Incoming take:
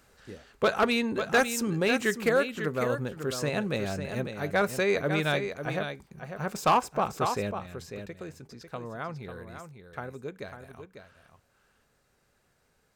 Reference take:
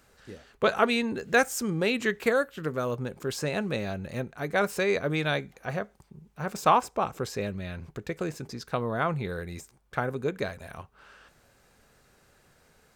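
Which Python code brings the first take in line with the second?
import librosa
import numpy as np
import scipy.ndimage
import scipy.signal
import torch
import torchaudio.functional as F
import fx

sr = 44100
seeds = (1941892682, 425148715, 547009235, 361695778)

y = fx.fix_declip(x, sr, threshold_db=-16.0)
y = fx.fix_echo_inverse(y, sr, delay_ms=547, level_db=-8.5)
y = fx.gain(y, sr, db=fx.steps((0.0, 0.0), (7.51, 9.0)))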